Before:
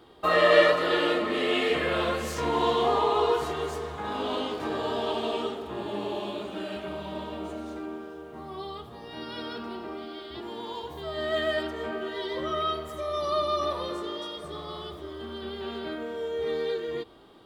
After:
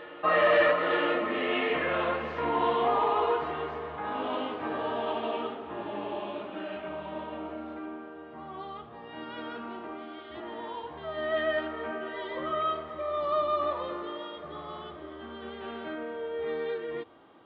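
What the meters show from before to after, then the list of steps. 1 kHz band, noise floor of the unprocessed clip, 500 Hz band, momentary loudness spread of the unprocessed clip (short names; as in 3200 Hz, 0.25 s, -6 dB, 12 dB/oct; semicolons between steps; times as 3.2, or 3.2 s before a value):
-0.5 dB, -43 dBFS, -3.0 dB, 15 LU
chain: overloaded stage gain 17 dB; speaker cabinet 120–2700 Hz, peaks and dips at 130 Hz -5 dB, 200 Hz -6 dB, 400 Hz -7 dB; on a send: reverse echo 0.911 s -18.5 dB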